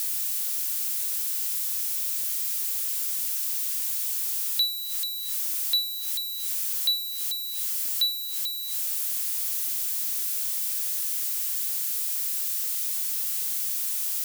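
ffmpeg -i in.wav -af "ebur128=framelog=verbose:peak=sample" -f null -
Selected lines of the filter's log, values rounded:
Integrated loudness:
  I:         -25.1 LUFS
  Threshold: -35.0 LUFS
Loudness range:
  LRA:         0.5 LU
  Threshold: -45.1 LUFS
  LRA low:   -25.4 LUFS
  LRA high:  -24.9 LUFS
Sample peak:
  Peak:      -16.1 dBFS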